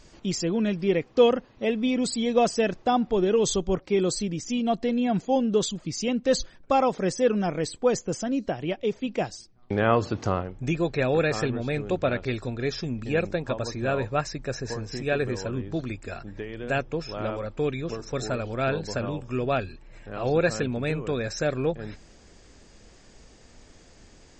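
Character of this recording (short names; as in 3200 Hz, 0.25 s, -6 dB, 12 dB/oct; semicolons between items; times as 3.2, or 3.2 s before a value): noise floor -53 dBFS; spectral tilt -5.5 dB/oct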